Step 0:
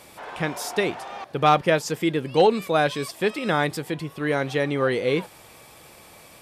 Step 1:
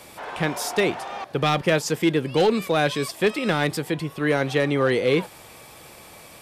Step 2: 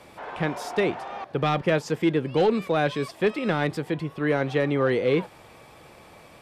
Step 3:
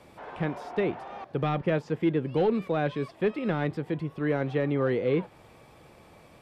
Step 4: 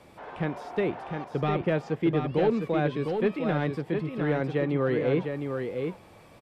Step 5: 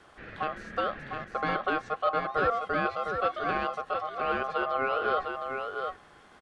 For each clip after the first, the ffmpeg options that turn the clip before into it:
-filter_complex "[0:a]acrossover=split=350|1900[s0][s1][s2];[s1]alimiter=limit=0.126:level=0:latency=1:release=34[s3];[s0][s3][s2]amix=inputs=3:normalize=0,asoftclip=type=hard:threshold=0.168,volume=1.41"
-af "lowpass=f=2100:p=1,volume=0.841"
-filter_complex "[0:a]lowshelf=f=500:g=6,acrossover=split=3800[s0][s1];[s1]acompressor=threshold=0.00158:ratio=6[s2];[s0][s2]amix=inputs=2:normalize=0,volume=0.447"
-af "aecho=1:1:705:0.531"
-af "aresample=22050,aresample=44100,aeval=exprs='val(0)*sin(2*PI*930*n/s)':c=same"

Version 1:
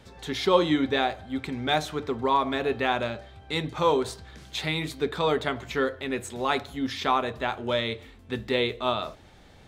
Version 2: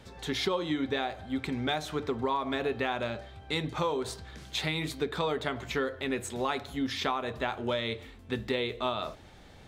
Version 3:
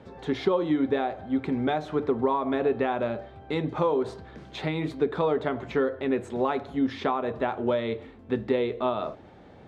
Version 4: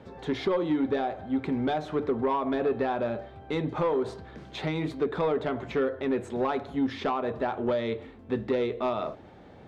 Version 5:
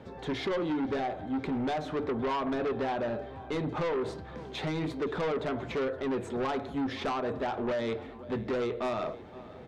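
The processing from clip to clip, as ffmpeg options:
-af "acompressor=threshold=0.0501:ratio=10"
-af "bandpass=f=380:t=q:w=0.53:csg=0,volume=2.24"
-af "asoftclip=type=tanh:threshold=0.119"
-af "aecho=1:1:519|1038|1557|2076:0.0841|0.0471|0.0264|0.0148,aeval=exprs='0.126*(cos(1*acos(clip(val(0)/0.126,-1,1)))-cos(1*PI/2))+0.0224*(cos(5*acos(clip(val(0)/0.126,-1,1)))-cos(5*PI/2))':c=same,volume=0.562"

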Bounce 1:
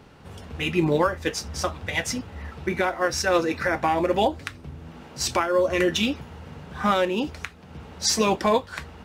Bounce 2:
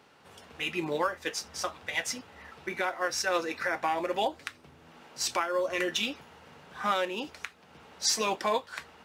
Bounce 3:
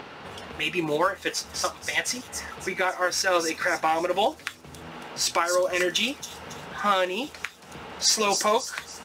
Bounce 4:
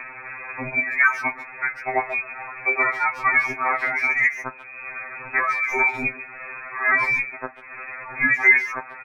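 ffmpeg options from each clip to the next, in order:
-af "highpass=f=680:p=1,volume=0.631"
-filter_complex "[0:a]acrossover=split=4800[s0][s1];[s0]acompressor=mode=upward:threshold=0.0158:ratio=2.5[s2];[s1]aecho=1:1:276|552|828|1104|1380|1656:0.708|0.304|0.131|0.0563|0.0242|0.0104[s3];[s2][s3]amix=inputs=2:normalize=0,volume=1.88"
-filter_complex "[0:a]lowpass=f=2300:t=q:w=0.5098,lowpass=f=2300:t=q:w=0.6013,lowpass=f=2300:t=q:w=0.9,lowpass=f=2300:t=q:w=2.563,afreqshift=-2700,asplit=2[s0][s1];[s1]adelay=140,highpass=300,lowpass=3400,asoftclip=type=hard:threshold=0.1,volume=0.224[s2];[s0][s2]amix=inputs=2:normalize=0,afftfilt=real='re*2.45*eq(mod(b,6),0)':imag='im*2.45*eq(mod(b,6),0)':win_size=2048:overlap=0.75,volume=2.51"

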